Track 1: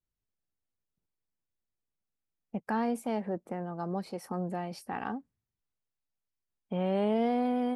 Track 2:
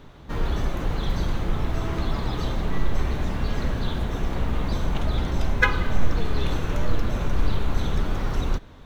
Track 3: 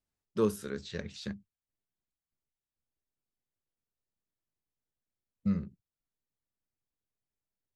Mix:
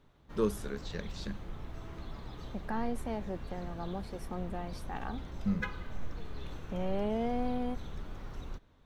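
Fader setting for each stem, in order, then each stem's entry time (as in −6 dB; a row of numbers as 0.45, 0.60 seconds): −5.0, −18.0, −2.0 decibels; 0.00, 0.00, 0.00 seconds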